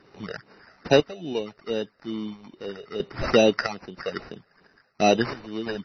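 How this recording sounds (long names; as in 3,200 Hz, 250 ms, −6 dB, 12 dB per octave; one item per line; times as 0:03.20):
sample-and-hold tremolo 3 Hz, depth 80%
phaser sweep stages 8, 2.4 Hz, lowest notch 270–2,700 Hz
aliases and images of a low sample rate 3,300 Hz, jitter 0%
MP3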